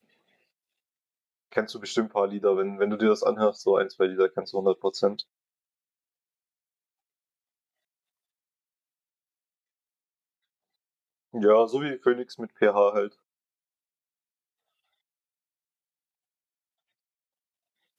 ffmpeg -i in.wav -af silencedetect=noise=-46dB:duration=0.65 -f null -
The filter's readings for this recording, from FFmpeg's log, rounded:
silence_start: 0.00
silence_end: 1.52 | silence_duration: 1.52
silence_start: 5.22
silence_end: 11.34 | silence_duration: 6.12
silence_start: 13.09
silence_end: 17.98 | silence_duration: 4.90